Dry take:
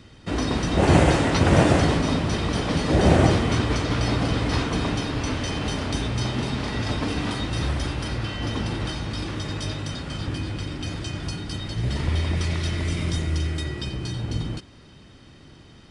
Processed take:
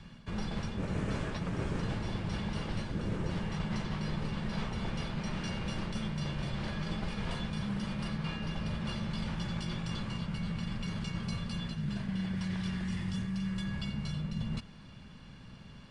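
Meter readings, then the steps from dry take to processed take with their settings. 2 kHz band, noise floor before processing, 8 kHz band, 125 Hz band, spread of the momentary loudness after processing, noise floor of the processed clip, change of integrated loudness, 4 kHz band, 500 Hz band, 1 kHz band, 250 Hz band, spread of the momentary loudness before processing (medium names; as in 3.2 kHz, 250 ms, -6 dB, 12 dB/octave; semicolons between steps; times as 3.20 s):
-12.5 dB, -48 dBFS, -17.0 dB, -11.5 dB, 2 LU, -51 dBFS, -12.0 dB, -12.5 dB, -17.5 dB, -15.0 dB, -10.0 dB, 13 LU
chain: treble shelf 4.5 kHz -7 dB; band-stop 1 kHz, Q 20; reverse; compression 6:1, threshold -30 dBFS, peak gain reduction 17.5 dB; reverse; frequency shift -270 Hz; trim -2 dB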